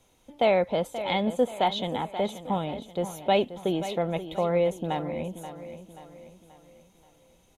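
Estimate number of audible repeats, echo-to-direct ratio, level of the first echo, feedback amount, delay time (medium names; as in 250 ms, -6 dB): 4, -11.0 dB, -12.0 dB, 45%, 531 ms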